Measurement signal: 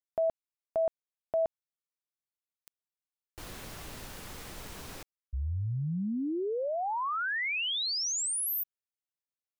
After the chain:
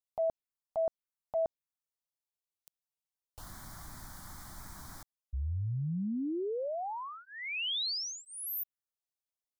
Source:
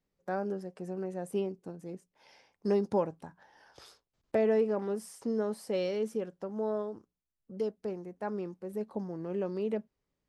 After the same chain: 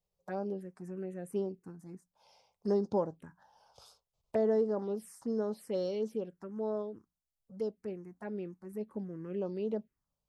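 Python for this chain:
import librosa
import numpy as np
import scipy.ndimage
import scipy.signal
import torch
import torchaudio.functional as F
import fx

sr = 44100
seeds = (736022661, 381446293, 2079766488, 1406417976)

y = fx.env_phaser(x, sr, low_hz=280.0, high_hz=2500.0, full_db=-27.5)
y = y * 10.0 ** (-1.5 / 20.0)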